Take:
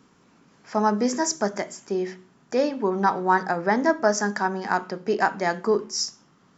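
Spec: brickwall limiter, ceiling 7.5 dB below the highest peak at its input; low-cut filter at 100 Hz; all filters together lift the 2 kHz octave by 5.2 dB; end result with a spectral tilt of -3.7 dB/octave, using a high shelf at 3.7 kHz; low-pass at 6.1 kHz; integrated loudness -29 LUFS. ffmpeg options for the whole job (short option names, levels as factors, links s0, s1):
-af "highpass=100,lowpass=6100,equalizer=f=2000:t=o:g=8.5,highshelf=f=3700:g=-6.5,volume=0.708,alimiter=limit=0.168:level=0:latency=1"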